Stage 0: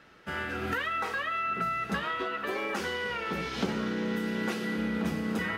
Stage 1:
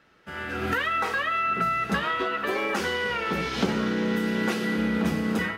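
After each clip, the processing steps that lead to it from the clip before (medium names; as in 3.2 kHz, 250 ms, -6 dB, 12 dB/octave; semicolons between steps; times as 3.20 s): level rider gain up to 10 dB; trim -4.5 dB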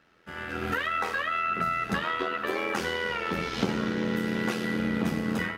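AM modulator 83 Hz, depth 45%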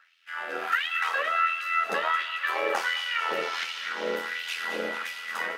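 LFO high-pass sine 1.4 Hz 500–3000 Hz; feedback echo behind a high-pass 222 ms, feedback 57%, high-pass 1.4 kHz, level -9 dB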